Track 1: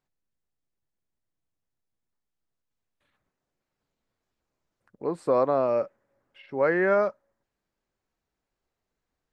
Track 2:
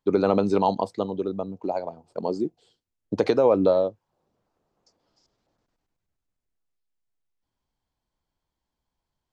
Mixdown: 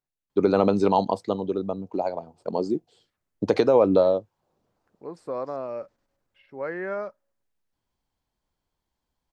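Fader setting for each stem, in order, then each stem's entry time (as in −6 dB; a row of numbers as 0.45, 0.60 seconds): −8.5, +1.0 decibels; 0.00, 0.30 seconds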